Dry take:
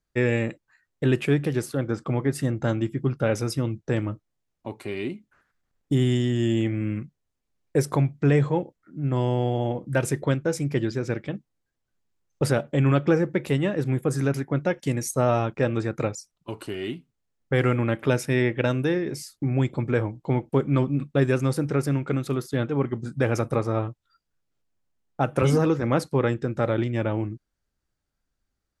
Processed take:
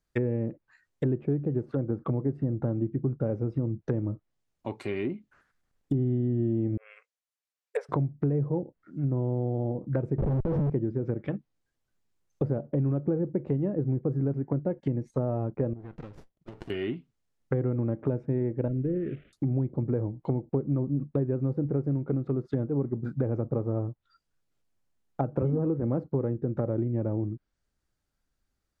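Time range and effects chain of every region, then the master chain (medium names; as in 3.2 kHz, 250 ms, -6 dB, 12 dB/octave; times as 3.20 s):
6.77–7.89 s: brick-wall FIR high-pass 420 Hz + tilt shelf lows -6.5 dB, about 780 Hz + upward expansion, over -47 dBFS
10.18–10.70 s: low-pass 6.4 kHz + bass shelf 110 Hz +9 dB + Schmitt trigger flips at -37.5 dBFS
15.73–16.70 s: low-pass 5.5 kHz + compression 10:1, threshold -38 dBFS + sliding maximum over 33 samples
18.68–19.33 s: CVSD coder 16 kbps + Butterworth band-stop 920 Hz, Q 1.5 + peaking EQ 980 Hz -12 dB 1.8 oct
whole clip: low-pass that closes with the level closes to 500 Hz, closed at -22.5 dBFS; compression, threshold -23 dBFS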